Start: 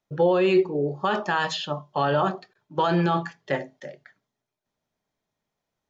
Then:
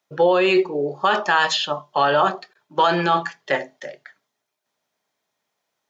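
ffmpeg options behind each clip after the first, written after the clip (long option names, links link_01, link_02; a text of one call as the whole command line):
ffmpeg -i in.wav -af "highpass=frequency=720:poles=1,volume=8.5dB" out.wav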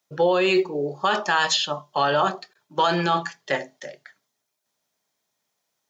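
ffmpeg -i in.wav -af "bass=frequency=250:gain=4,treble=frequency=4000:gain=8,volume=-3.5dB" out.wav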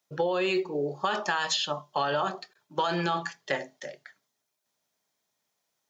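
ffmpeg -i in.wav -af "acompressor=threshold=-21dB:ratio=6,volume=-2.5dB" out.wav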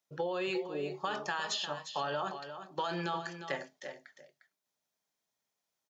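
ffmpeg -i in.wav -af "aecho=1:1:353:0.316,volume=-7.5dB" out.wav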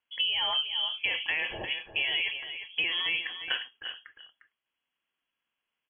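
ffmpeg -i in.wav -af "lowpass=frequency=3000:width_type=q:width=0.5098,lowpass=frequency=3000:width_type=q:width=0.6013,lowpass=frequency=3000:width_type=q:width=0.9,lowpass=frequency=3000:width_type=q:width=2.563,afreqshift=-3500,volume=5.5dB" out.wav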